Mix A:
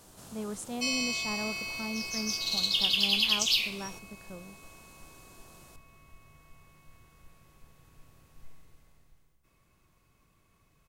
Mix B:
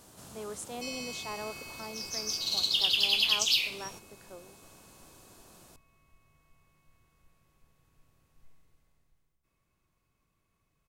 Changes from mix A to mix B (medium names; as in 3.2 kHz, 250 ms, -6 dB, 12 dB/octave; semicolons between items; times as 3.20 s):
speech: add high-pass 310 Hz 24 dB/octave; first sound -9.5 dB